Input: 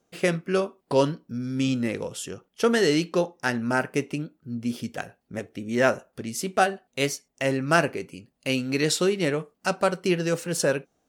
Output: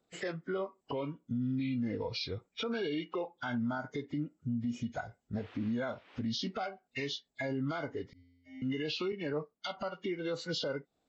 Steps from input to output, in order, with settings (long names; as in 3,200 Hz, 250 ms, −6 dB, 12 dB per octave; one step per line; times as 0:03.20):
hearing-aid frequency compression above 1,300 Hz 1.5 to 1
noise reduction from a noise print of the clip's start 13 dB
0:05.36–0:06.20: noise in a band 210–3,100 Hz −61 dBFS
downward compressor 6 to 1, threshold −35 dBFS, peak gain reduction 18.5 dB
brickwall limiter −34 dBFS, peak gain reduction 11 dB
0:08.13–0:08.62: tuned comb filter 88 Hz, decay 1.6 s, harmonics odd, mix 100%
0:09.12–0:09.77: multiband upward and downward expander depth 100%
level +6.5 dB